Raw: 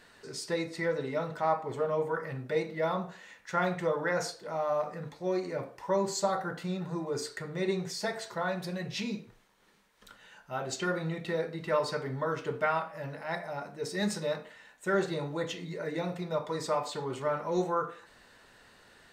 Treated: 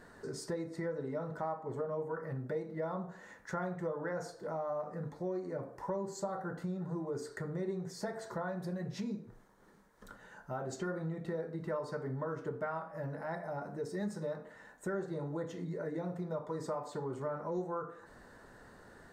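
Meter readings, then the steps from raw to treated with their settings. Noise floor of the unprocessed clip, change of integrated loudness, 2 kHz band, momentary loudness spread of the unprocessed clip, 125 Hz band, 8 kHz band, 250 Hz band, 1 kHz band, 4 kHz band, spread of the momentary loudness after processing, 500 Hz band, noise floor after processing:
−59 dBFS, −6.5 dB, −10.5 dB, 8 LU, −2.5 dB, −10.5 dB, −4.0 dB, −8.5 dB, −15.0 dB, 8 LU, −6.5 dB, −58 dBFS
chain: drawn EQ curve 300 Hz 0 dB, 1,700 Hz −6 dB, 2,600 Hz −20 dB, 6,900 Hz −10 dB
downward compressor 3 to 1, threshold −45 dBFS, peak gain reduction 15 dB
level +6.5 dB

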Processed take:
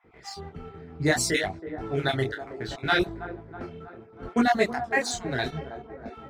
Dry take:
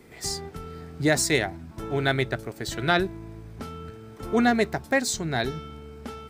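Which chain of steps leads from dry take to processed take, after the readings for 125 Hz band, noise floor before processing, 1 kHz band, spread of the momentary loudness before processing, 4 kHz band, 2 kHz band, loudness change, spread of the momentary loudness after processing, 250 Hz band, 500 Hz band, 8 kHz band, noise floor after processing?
−2.5 dB, −46 dBFS, +0.5 dB, 18 LU, −1.5 dB, −0.5 dB, −1.5 dB, 18 LU, −2.0 dB, −1.5 dB, −3.5 dB, −51 dBFS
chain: time-frequency cells dropped at random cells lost 27%
low-pass that shuts in the quiet parts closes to 1,600 Hz, open at −20.5 dBFS
in parallel at −5 dB: dead-zone distortion −41.5 dBFS
on the sum: delay with a band-pass on its return 323 ms, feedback 58%, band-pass 570 Hz, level −10 dB
micro pitch shift up and down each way 23 cents

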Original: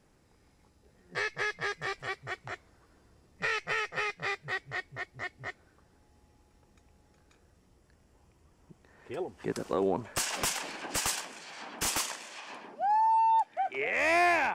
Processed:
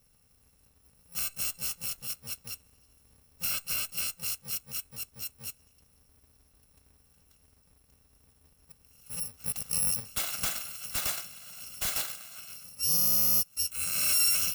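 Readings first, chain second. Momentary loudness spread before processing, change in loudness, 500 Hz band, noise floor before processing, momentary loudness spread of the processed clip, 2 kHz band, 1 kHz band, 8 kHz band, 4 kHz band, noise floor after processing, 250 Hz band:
18 LU, +2.5 dB, −17.5 dB, −66 dBFS, 19 LU, −10.0 dB, −19.0 dB, +7.0 dB, +4.5 dB, −65 dBFS, −9.0 dB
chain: samples in bit-reversed order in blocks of 128 samples

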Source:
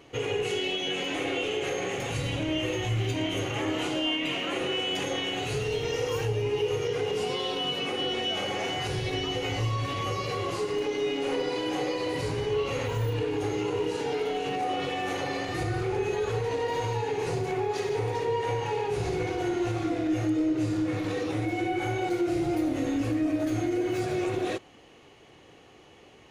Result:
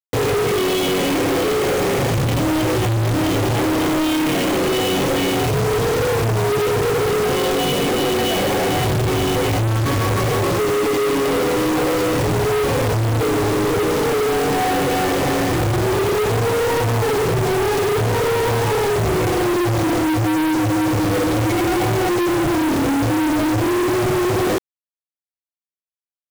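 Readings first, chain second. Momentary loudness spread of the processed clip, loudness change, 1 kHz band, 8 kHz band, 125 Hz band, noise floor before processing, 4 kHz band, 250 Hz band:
1 LU, +10.5 dB, +11.5 dB, +14.5 dB, +12.0 dB, −54 dBFS, +6.0 dB, +11.0 dB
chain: spectral tilt −3.5 dB per octave
notch comb filter 1,400 Hz
log-companded quantiser 2 bits
level +7.5 dB

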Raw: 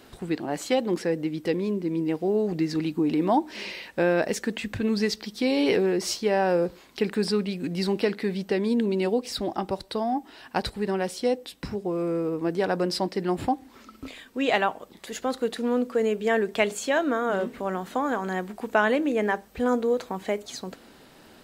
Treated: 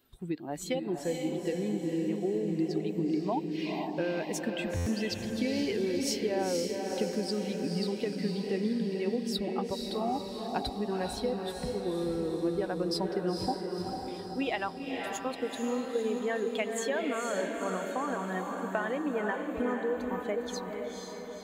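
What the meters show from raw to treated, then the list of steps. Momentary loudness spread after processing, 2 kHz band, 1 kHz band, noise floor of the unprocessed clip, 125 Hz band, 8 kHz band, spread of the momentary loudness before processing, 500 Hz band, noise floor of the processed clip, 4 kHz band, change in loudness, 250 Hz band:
5 LU, −8.0 dB, −7.0 dB, −52 dBFS, −3.5 dB, −2.5 dB, 8 LU, −6.0 dB, −41 dBFS, −4.5 dB, −6.0 dB, −5.0 dB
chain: spectral dynamics exaggerated over time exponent 1.5
downward compressor, threshold −29 dBFS, peak gain reduction 11.5 dB
feedback delay with all-pass diffusion 488 ms, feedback 58%, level −3.5 dB
buffer that repeats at 0:04.76, samples 512, times 8

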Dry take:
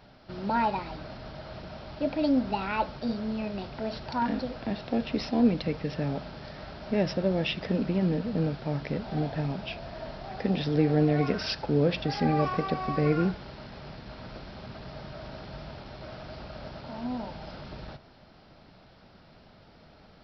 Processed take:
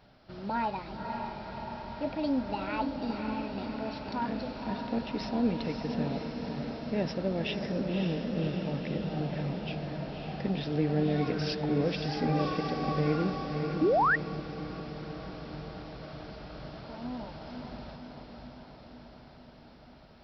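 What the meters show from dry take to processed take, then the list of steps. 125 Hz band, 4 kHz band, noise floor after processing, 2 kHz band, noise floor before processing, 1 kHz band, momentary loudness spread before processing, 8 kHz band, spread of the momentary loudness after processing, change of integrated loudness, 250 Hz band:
−3.0 dB, −3.0 dB, −53 dBFS, +1.0 dB, −55 dBFS, −1.0 dB, 17 LU, can't be measured, 15 LU, −3.5 dB, −3.0 dB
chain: feedback delay with all-pass diffusion 555 ms, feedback 67%, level −5 dB
sound drawn into the spectrogram rise, 0:13.81–0:14.16, 280–2,000 Hz −19 dBFS
level −5 dB

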